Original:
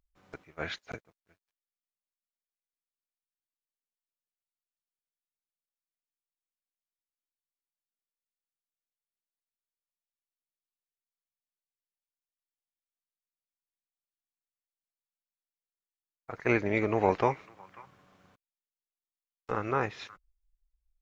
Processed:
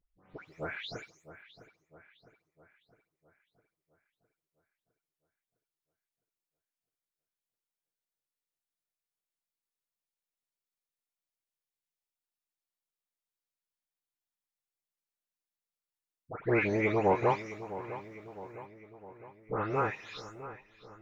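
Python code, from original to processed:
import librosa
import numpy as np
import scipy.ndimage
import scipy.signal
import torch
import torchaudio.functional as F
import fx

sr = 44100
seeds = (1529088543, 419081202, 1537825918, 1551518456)

p1 = fx.spec_delay(x, sr, highs='late', ms=300)
y = p1 + fx.echo_filtered(p1, sr, ms=658, feedback_pct=55, hz=3600.0, wet_db=-14.0, dry=0)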